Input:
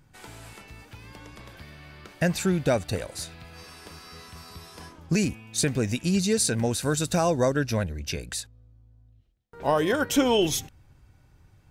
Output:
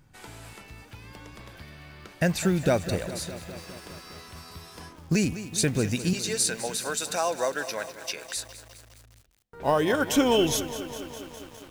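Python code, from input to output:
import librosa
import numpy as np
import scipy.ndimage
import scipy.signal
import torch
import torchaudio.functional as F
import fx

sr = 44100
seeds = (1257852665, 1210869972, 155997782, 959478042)

y = fx.highpass(x, sr, hz=620.0, slope=12, at=(6.13, 8.37))
y = fx.quant_float(y, sr, bits=4)
y = fx.echo_crushed(y, sr, ms=205, feedback_pct=80, bits=7, wet_db=-13.5)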